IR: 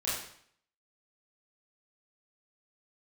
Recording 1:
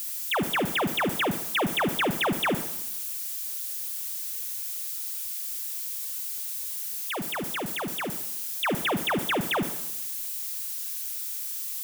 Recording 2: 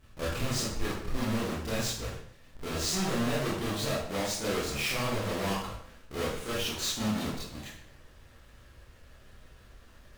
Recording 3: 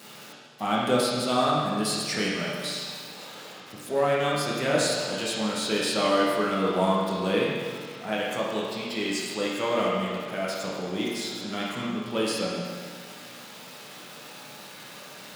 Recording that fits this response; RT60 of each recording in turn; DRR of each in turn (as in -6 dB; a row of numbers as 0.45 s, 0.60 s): 2; 0.90 s, 0.60 s, 1.8 s; 10.0 dB, -9.5 dB, -6.5 dB